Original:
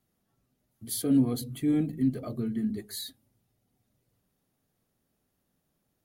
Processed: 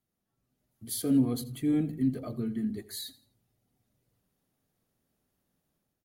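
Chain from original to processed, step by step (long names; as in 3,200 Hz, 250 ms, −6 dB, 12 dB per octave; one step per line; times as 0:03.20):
automatic gain control gain up to 7 dB
on a send: repeating echo 84 ms, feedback 31%, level −18.5 dB
on the sum: level −8.5 dB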